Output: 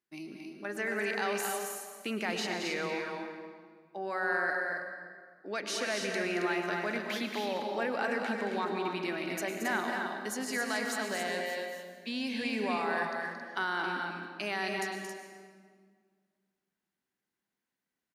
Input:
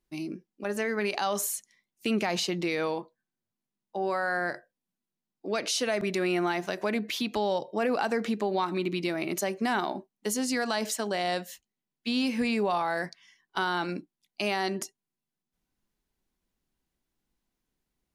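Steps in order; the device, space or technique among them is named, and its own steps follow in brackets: stadium PA (high-pass 160 Hz 12 dB/octave; peaking EQ 1.7 kHz +8 dB 0.88 oct; loudspeakers at several distances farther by 77 m -7 dB, 93 m -6 dB; reverberation RT60 1.9 s, pre-delay 99 ms, DRR 6 dB); 11.26–12.64 s: band-stop 1.3 kHz, Q 5.6; trim -8 dB

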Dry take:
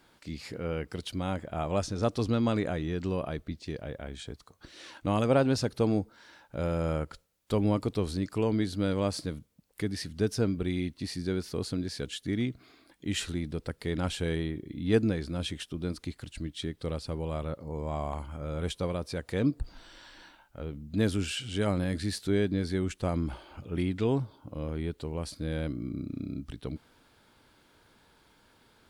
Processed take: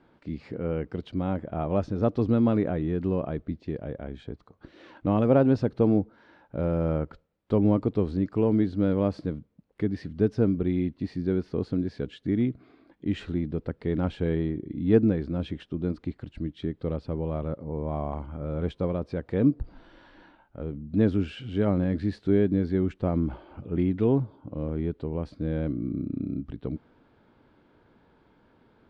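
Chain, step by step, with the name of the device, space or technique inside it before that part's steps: phone in a pocket (low-pass 3.4 kHz 12 dB/octave; peaking EQ 260 Hz +6 dB 2.7 oct; treble shelf 2.2 kHz -9.5 dB)

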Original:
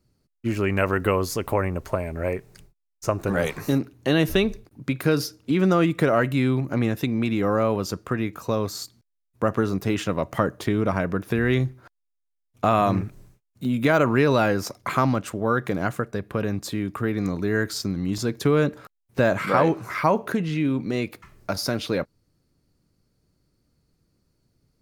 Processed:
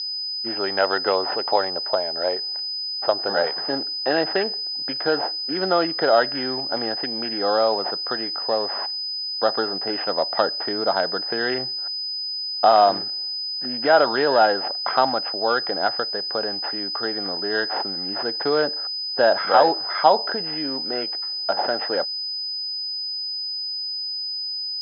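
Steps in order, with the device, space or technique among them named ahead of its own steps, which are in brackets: toy sound module (decimation joined by straight lines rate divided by 8×; class-D stage that switches slowly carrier 5 kHz; cabinet simulation 690–4300 Hz, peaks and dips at 790 Hz +7 dB, 1.1 kHz -10 dB, 2.3 kHz -10 dB); trim +8.5 dB

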